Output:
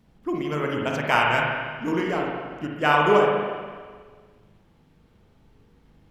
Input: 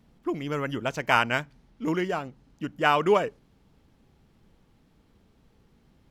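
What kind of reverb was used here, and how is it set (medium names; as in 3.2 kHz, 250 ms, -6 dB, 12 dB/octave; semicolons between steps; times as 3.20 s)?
spring tank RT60 1.6 s, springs 40/59 ms, chirp 60 ms, DRR -1.5 dB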